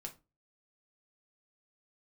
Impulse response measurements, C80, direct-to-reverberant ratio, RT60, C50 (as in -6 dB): 22.5 dB, 2.0 dB, 0.25 s, 15.0 dB